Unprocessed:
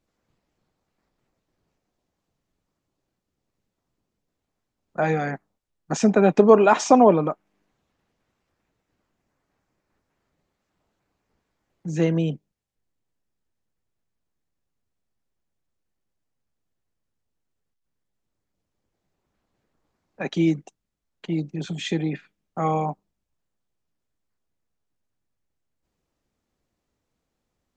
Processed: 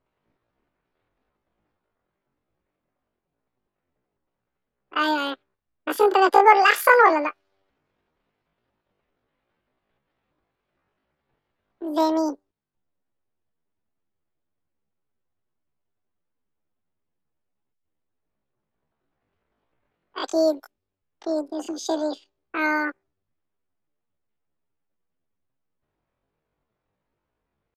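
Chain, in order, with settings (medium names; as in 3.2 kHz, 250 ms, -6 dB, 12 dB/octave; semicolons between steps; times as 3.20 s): pitch shift +11.5 st; level-controlled noise filter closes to 2.8 kHz, open at -21 dBFS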